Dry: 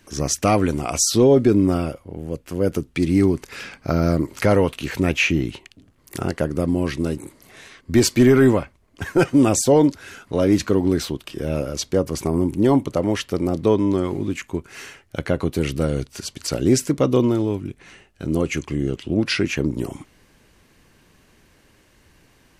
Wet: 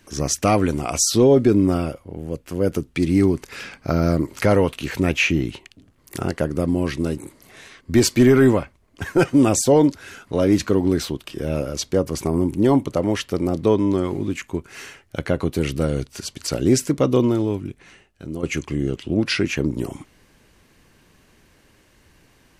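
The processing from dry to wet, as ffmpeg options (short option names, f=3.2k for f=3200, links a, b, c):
-filter_complex "[0:a]asplit=2[a][b];[a]atrim=end=18.43,asetpts=PTS-STARTPTS,afade=t=out:st=17.61:d=0.82:silence=0.298538[c];[b]atrim=start=18.43,asetpts=PTS-STARTPTS,afade=t=in:d=0.004:c=hsin:silence=0.298538[d];[c][d]concat=n=2:v=0:a=1"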